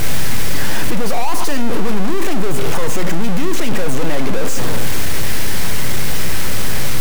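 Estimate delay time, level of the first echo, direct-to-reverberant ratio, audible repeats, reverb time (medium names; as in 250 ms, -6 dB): no echo, no echo, 12.0 dB, no echo, 0.70 s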